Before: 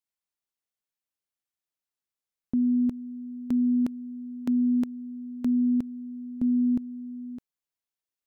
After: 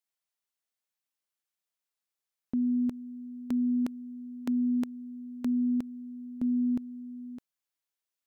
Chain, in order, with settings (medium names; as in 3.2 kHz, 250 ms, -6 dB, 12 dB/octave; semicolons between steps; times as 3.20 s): bass shelf 340 Hz -8.5 dB; trim +1.5 dB